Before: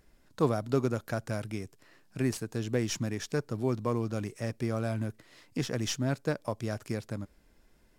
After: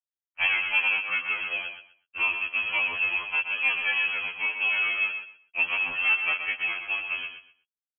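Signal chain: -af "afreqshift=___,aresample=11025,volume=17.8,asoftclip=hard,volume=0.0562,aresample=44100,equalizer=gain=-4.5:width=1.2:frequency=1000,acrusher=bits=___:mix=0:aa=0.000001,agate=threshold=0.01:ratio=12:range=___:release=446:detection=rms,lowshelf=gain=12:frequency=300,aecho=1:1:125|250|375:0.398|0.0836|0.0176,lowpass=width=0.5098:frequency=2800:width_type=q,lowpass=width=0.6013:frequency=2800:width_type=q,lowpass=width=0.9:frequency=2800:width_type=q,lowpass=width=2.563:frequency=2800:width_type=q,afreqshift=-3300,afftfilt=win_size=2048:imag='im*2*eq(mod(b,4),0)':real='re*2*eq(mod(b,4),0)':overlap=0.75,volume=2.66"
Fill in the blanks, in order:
490, 6, 0.0631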